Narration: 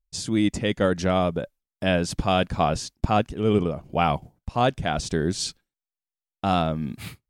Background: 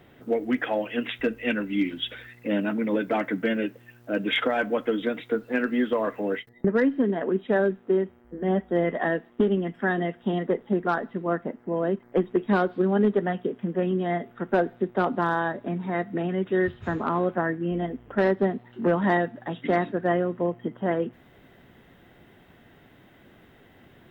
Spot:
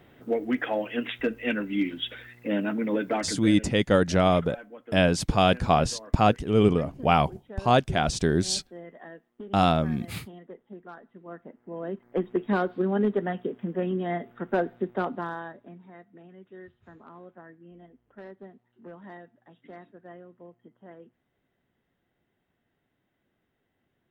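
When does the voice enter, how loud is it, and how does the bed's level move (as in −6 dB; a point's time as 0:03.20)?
3.10 s, +1.0 dB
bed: 0:03.13 −1.5 dB
0:03.79 −19.5 dB
0:11.04 −19.5 dB
0:12.28 −3 dB
0:14.93 −3 dB
0:16.04 −22.5 dB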